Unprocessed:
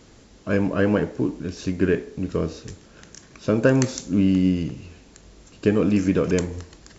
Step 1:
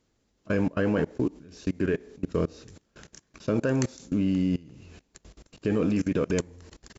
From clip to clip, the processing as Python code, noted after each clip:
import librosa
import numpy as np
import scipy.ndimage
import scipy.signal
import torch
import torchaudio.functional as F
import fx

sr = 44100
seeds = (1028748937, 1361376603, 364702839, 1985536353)

y = fx.level_steps(x, sr, step_db=24)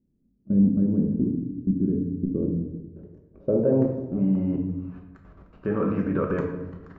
y = fx.filter_sweep_lowpass(x, sr, from_hz=240.0, to_hz=1300.0, start_s=2.06, end_s=5.08, q=2.8)
y = fx.room_shoebox(y, sr, seeds[0], volume_m3=360.0, walls='mixed', distance_m=1.1)
y = y * librosa.db_to_amplitude(-2.5)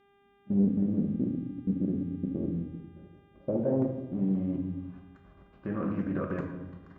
y = fx.dmg_buzz(x, sr, base_hz=400.0, harmonics=9, level_db=-57.0, tilt_db=-7, odd_only=False)
y = fx.notch_comb(y, sr, f0_hz=440.0)
y = fx.doppler_dist(y, sr, depth_ms=0.34)
y = y * librosa.db_to_amplitude(-5.5)